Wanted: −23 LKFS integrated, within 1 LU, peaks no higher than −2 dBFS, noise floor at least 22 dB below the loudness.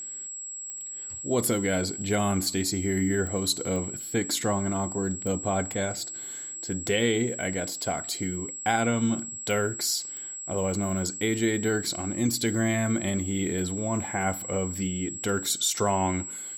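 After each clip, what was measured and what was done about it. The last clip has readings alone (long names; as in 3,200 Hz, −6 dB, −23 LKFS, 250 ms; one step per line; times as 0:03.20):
number of clicks 6; interfering tone 7,700 Hz; level of the tone −35 dBFS; integrated loudness −27.5 LKFS; sample peak −10.0 dBFS; target loudness −23.0 LKFS
→ click removal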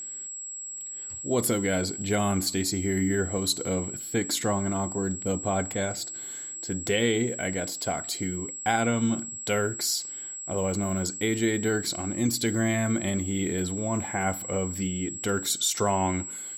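number of clicks 0; interfering tone 7,700 Hz; level of the tone −35 dBFS
→ notch filter 7,700 Hz, Q 30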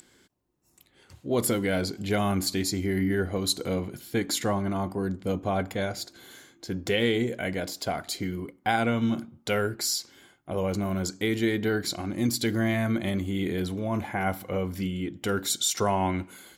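interfering tone none found; integrated loudness −28.0 LKFS; sample peak −10.5 dBFS; target loudness −23.0 LKFS
→ level +5 dB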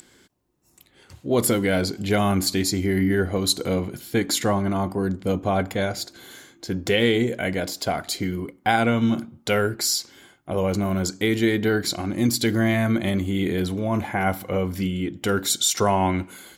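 integrated loudness −23.0 LKFS; sample peak −5.5 dBFS; background noise floor −59 dBFS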